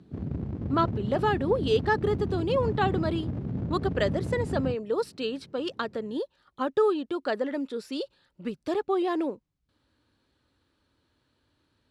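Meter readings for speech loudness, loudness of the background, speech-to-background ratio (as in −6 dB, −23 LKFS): −29.0 LKFS, −33.0 LKFS, 4.0 dB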